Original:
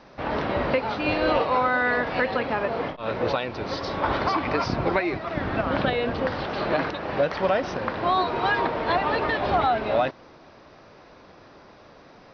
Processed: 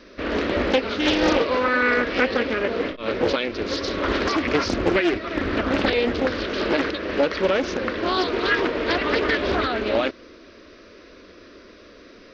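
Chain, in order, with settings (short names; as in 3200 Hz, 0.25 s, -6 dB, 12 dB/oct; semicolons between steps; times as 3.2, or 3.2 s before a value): fixed phaser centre 340 Hz, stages 4; Doppler distortion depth 0.53 ms; gain +7 dB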